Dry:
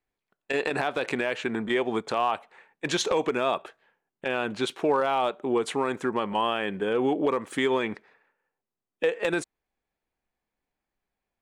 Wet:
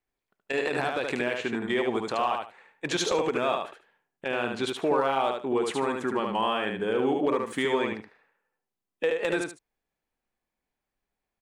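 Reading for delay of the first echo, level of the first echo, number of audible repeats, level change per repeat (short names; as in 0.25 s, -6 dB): 74 ms, -4.0 dB, 2, -14.0 dB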